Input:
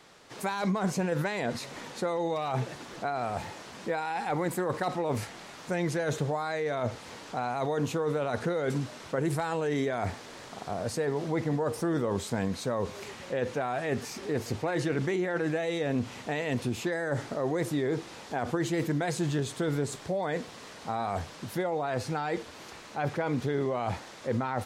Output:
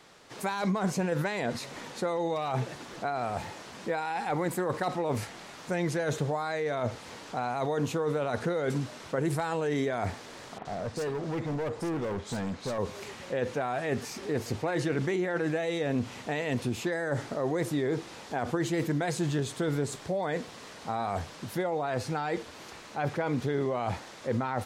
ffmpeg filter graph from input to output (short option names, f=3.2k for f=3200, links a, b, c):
-filter_complex "[0:a]asettb=1/sr,asplit=3[a][b][c];[a]atrim=end=10.584[d];[b]atrim=start=10.58:end=12.78,asetpts=PTS-STARTPTS,afade=t=in:d=0.004:c=qsin,afade=t=out:st=2.196:d=0.004:c=qsin,lowpass=7.7k,acrossover=split=2700[e][f];[f]adelay=70[g];[e][g]amix=inputs=2:normalize=0,atrim=end_sample=97020,volume=29dB,asoftclip=hard,volume=-29dB[h];[c]atrim=start=12.776[i];[d][h]acrossfade=d=0.004:c1=hsin:c2=qsin[j];[j][i]acrossfade=d=0.004:c1=qsin:c2=hsin"